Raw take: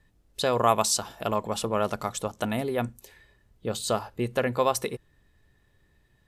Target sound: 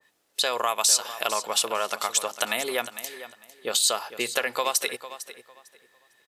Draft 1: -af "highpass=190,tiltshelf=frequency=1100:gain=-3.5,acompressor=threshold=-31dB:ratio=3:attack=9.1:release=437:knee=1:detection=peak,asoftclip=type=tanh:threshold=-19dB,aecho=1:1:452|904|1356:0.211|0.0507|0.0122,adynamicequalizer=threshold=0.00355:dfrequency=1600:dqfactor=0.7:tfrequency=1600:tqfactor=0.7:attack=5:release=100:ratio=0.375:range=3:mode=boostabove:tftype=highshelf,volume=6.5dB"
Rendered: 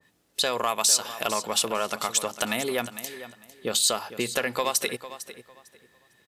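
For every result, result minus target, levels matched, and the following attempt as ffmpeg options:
soft clipping: distortion +11 dB; 250 Hz band +7.5 dB
-af "highpass=190,tiltshelf=frequency=1100:gain=-3.5,acompressor=threshold=-31dB:ratio=3:attack=9.1:release=437:knee=1:detection=peak,asoftclip=type=tanh:threshold=-12dB,aecho=1:1:452|904|1356:0.211|0.0507|0.0122,adynamicequalizer=threshold=0.00355:dfrequency=1600:dqfactor=0.7:tfrequency=1600:tqfactor=0.7:attack=5:release=100:ratio=0.375:range=3:mode=boostabove:tftype=highshelf,volume=6.5dB"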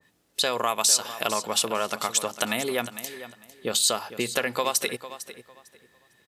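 250 Hz band +7.0 dB
-af "highpass=460,tiltshelf=frequency=1100:gain=-3.5,acompressor=threshold=-31dB:ratio=3:attack=9.1:release=437:knee=1:detection=peak,asoftclip=type=tanh:threshold=-12dB,aecho=1:1:452|904|1356:0.211|0.0507|0.0122,adynamicequalizer=threshold=0.00355:dfrequency=1600:dqfactor=0.7:tfrequency=1600:tqfactor=0.7:attack=5:release=100:ratio=0.375:range=3:mode=boostabove:tftype=highshelf,volume=6.5dB"

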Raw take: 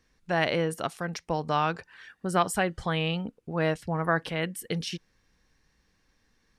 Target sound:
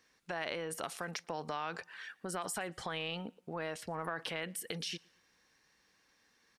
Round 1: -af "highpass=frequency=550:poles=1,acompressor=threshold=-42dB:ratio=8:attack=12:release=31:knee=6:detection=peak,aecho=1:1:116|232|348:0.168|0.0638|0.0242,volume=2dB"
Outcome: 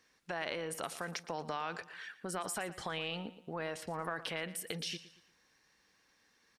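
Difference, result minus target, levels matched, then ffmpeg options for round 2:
echo-to-direct +12 dB
-af "highpass=frequency=550:poles=1,acompressor=threshold=-42dB:ratio=8:attack=12:release=31:knee=6:detection=peak,aecho=1:1:116|232:0.0422|0.016,volume=2dB"

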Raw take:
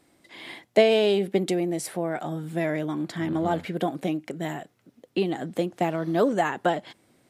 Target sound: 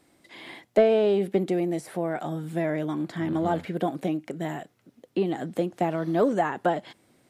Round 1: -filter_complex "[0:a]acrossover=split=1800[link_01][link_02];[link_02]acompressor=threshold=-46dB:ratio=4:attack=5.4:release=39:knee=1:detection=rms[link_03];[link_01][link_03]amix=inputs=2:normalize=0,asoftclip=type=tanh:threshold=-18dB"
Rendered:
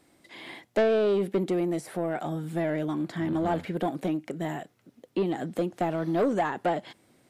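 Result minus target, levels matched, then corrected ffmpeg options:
soft clipping: distortion +15 dB
-filter_complex "[0:a]acrossover=split=1800[link_01][link_02];[link_02]acompressor=threshold=-46dB:ratio=4:attack=5.4:release=39:knee=1:detection=rms[link_03];[link_01][link_03]amix=inputs=2:normalize=0,asoftclip=type=tanh:threshold=-6dB"

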